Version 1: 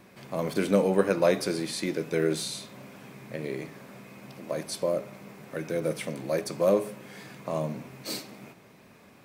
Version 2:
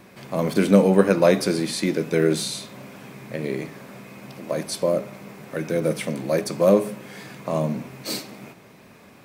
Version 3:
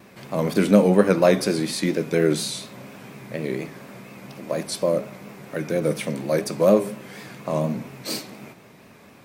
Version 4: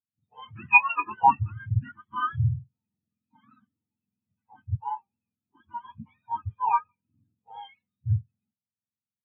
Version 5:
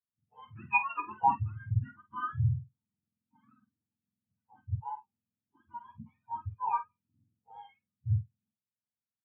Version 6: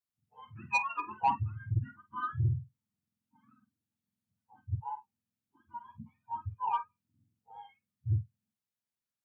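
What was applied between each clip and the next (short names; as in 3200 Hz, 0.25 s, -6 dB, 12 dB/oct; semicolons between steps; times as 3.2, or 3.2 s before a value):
dynamic EQ 210 Hz, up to +5 dB, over -41 dBFS, Q 2; gain +5.5 dB
vibrato 4.2 Hz 67 cents
spectrum mirrored in octaves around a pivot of 710 Hz; spectral expander 2.5:1
air absorption 490 m; doubler 47 ms -11 dB; gain -5 dB
soft clip -19.5 dBFS, distortion -17 dB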